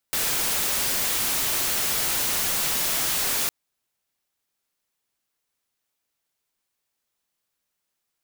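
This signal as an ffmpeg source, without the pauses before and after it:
-f lavfi -i "anoisesrc=c=white:a=0.103:d=3.36:r=44100:seed=1"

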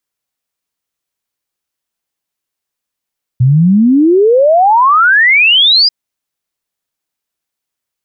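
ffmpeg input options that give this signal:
-f lavfi -i "aevalsrc='0.596*clip(min(t,2.49-t)/0.01,0,1)*sin(2*PI*120*2.49/log(5000/120)*(exp(log(5000/120)*t/2.49)-1))':d=2.49:s=44100"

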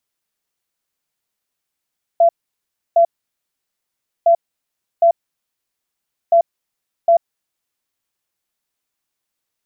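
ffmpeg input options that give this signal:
-f lavfi -i "aevalsrc='0.422*sin(2*PI*677*t)*clip(min(mod(mod(t,2.06),0.76),0.09-mod(mod(t,2.06),0.76))/0.005,0,1)*lt(mod(t,2.06),1.52)':d=6.18:s=44100"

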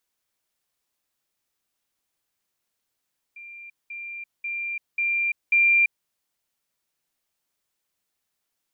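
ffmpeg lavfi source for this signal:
-f lavfi -i "aevalsrc='pow(10,(-39+6*floor(t/0.54))/20)*sin(2*PI*2380*t)*clip(min(mod(t,0.54),0.34-mod(t,0.54))/0.005,0,1)':d=2.7:s=44100"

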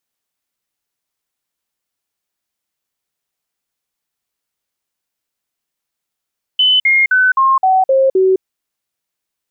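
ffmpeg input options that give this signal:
-f lavfi -i "aevalsrc='0.398*clip(min(mod(t,0.26),0.21-mod(t,0.26))/0.005,0,1)*sin(2*PI*3020*pow(2,-floor(t/0.26)/2)*mod(t,0.26))':d=1.82:s=44100"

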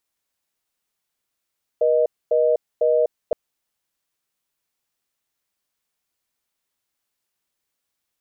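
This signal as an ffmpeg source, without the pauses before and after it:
-f lavfi -i "aevalsrc='0.133*(sin(2*PI*480*t)+sin(2*PI*620*t))*clip(min(mod(t,0.5),0.25-mod(t,0.5))/0.005,0,1)':d=1.52:s=44100"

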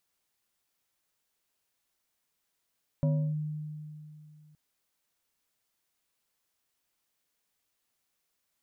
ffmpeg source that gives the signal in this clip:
-f lavfi -i "aevalsrc='0.0794*pow(10,-3*t/2.69)*sin(2*PI*152*t+0.61*clip(1-t/0.32,0,1)*sin(2*PI*2.67*152*t))':d=1.52:s=44100"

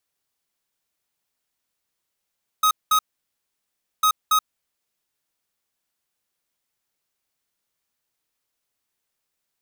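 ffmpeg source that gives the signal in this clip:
-f lavfi -i "aevalsrc='0.141*(2*lt(mod(1260*t,1),0.5)-1)*clip(min(mod(mod(t,1.4),0.28),0.08-mod(mod(t,1.4),0.28))/0.005,0,1)*lt(mod(t,1.4),0.56)':d=2.8:s=44100"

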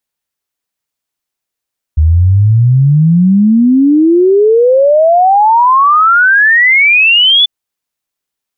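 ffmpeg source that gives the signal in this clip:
-f lavfi -i "aevalsrc='0.631*clip(min(t,5.49-t)/0.01,0,1)*sin(2*PI*75*5.49/log(3500/75)*(exp(log(3500/75)*t/5.49)-1))':d=5.49:s=44100"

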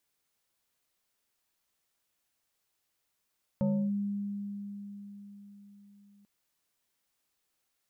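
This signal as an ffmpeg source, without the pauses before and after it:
-f lavfi -i "aevalsrc='0.0631*pow(10,-3*t/4.6)*sin(2*PI*202*t+0.91*clip(1-t/0.3,0,1)*sin(2*PI*1.73*202*t))':d=2.64:s=44100"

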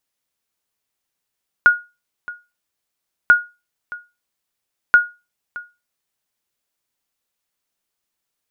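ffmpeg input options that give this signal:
-f lavfi -i "aevalsrc='0.75*(sin(2*PI*1440*mod(t,1.64))*exp(-6.91*mod(t,1.64)/0.26)+0.1*sin(2*PI*1440*max(mod(t,1.64)-0.62,0))*exp(-6.91*max(mod(t,1.64)-0.62,0)/0.26))':d=4.92:s=44100"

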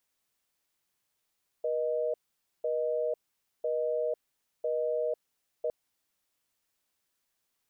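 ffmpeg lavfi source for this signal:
-f lavfi -i "aevalsrc='0.0316*(sin(2*PI*480*t)+sin(2*PI*620*t))*clip(min(mod(t,1),0.5-mod(t,1))/0.005,0,1)':d=4.06:s=44100"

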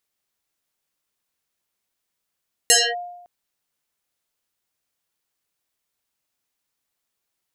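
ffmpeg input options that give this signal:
-f lavfi -i "aevalsrc='0.355*pow(10,-3*t/0.93)*sin(2*PI*707*t+8.6*clip(1-t/0.25,0,1)*sin(2*PI*1.67*707*t))':d=0.56:s=44100"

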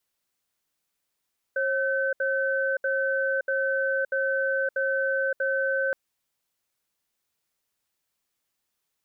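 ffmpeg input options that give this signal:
-f lavfi -i "aevalsrc='0.0531*(sin(2*PI*540*t)+sin(2*PI*1530*t))*clip(min(mod(t,0.64),0.57-mod(t,0.64))/0.005,0,1)':d=4.37:s=44100"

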